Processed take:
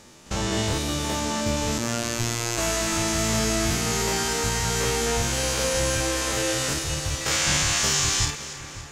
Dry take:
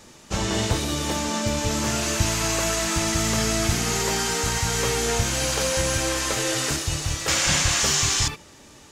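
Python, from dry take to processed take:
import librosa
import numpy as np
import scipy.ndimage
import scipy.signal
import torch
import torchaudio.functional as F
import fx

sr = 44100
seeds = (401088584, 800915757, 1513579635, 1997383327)

y = fx.spec_steps(x, sr, hold_ms=50)
y = fx.robotise(y, sr, hz=117.0, at=(1.78, 2.58))
y = fx.echo_split(y, sr, split_hz=1900.0, low_ms=562, high_ms=281, feedback_pct=52, wet_db=-14)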